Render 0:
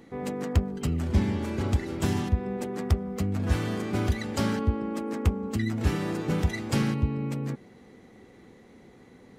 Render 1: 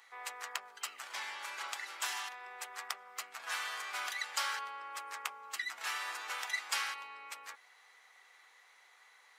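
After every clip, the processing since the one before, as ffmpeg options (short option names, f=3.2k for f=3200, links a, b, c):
-af "highpass=f=1k:w=0.5412,highpass=f=1k:w=1.3066,volume=1dB"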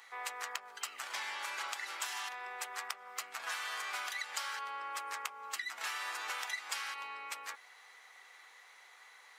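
-af "acompressor=threshold=-40dB:ratio=10,volume=4.5dB"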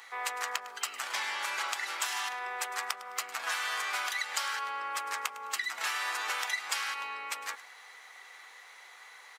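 -af "aecho=1:1:105|210|315:0.133|0.04|0.012,volume=6dB"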